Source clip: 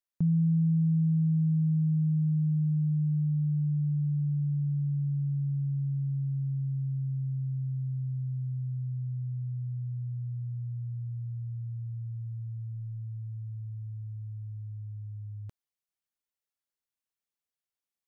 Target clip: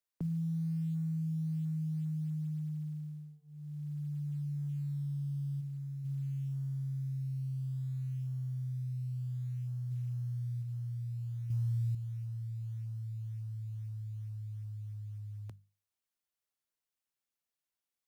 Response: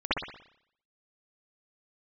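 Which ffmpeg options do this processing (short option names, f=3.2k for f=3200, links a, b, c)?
-filter_complex "[0:a]asplit=3[a][b][c];[a]afade=t=out:st=9.9:d=0.02[d];[b]equalizer=f=250:w=0.6:g=8,afade=t=in:st=9.9:d=0.02,afade=t=out:st=10.61:d=0.02[e];[c]afade=t=in:st=10.61:d=0.02[f];[d][e][f]amix=inputs=3:normalize=0,acrossover=split=110|290[g][h][i];[g]acompressor=threshold=-47dB:ratio=4[j];[h]acompressor=threshold=-39dB:ratio=4[k];[i]acompressor=threshold=-48dB:ratio=4[l];[j][k][l]amix=inputs=3:normalize=0,asplit=3[m][n][o];[m]afade=t=out:st=5.6:d=0.02[p];[n]equalizer=f=83:w=1.4:g=-12.5,afade=t=in:st=5.6:d=0.02,afade=t=out:st=6.04:d=0.02[q];[o]afade=t=in:st=6.04:d=0.02[r];[p][q][r]amix=inputs=3:normalize=0,bandreject=f=50:t=h:w=6,bandreject=f=100:t=h:w=6,bandreject=f=150:t=h:w=6,bandreject=f=200:t=h:w=6,acrusher=bits=9:mode=log:mix=0:aa=0.000001,asettb=1/sr,asplit=3[s][t][u];[s]atrim=end=11.504[v];[t]atrim=start=11.5:end=11.95,asetpts=PTS-STARTPTS,afade=t=in:d=0.004:c=qsin,afade=t=out:st=0.446:d=0.004:c=qsin,acontrast=77[w];[u]atrim=start=11.946[x];[v][w]acrossfade=d=0.004:c1=hsin:c2=qsin[y];[y][x]acrossfade=d=0.004:c1=qsin:c2=hsin"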